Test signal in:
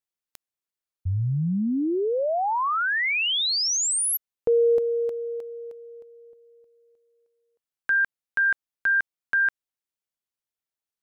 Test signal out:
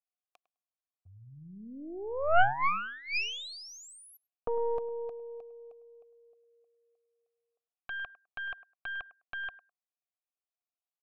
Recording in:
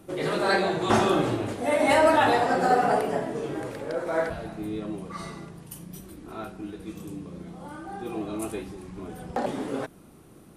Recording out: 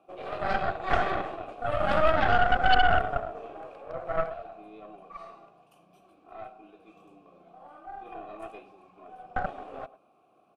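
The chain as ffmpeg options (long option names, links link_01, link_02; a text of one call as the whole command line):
ffmpeg -i in.wav -filter_complex "[0:a]asplit=3[link_01][link_02][link_03];[link_01]bandpass=frequency=730:width_type=q:width=8,volume=0dB[link_04];[link_02]bandpass=frequency=1090:width_type=q:width=8,volume=-6dB[link_05];[link_03]bandpass=frequency=2440:width_type=q:width=8,volume=-9dB[link_06];[link_04][link_05][link_06]amix=inputs=3:normalize=0,asplit=2[link_07][link_08];[link_08]adelay=103,lowpass=frequency=2200:poles=1,volume=-15.5dB,asplit=2[link_09][link_10];[link_10]adelay=103,lowpass=frequency=2200:poles=1,volume=0.15[link_11];[link_07][link_09][link_11]amix=inputs=3:normalize=0,aeval=exprs='0.211*(cos(1*acos(clip(val(0)/0.211,-1,1)))-cos(1*PI/2))+0.0168*(cos(5*acos(clip(val(0)/0.211,-1,1)))-cos(5*PI/2))+0.0841*(cos(6*acos(clip(val(0)/0.211,-1,1)))-cos(6*PI/2))':channel_layout=same" out.wav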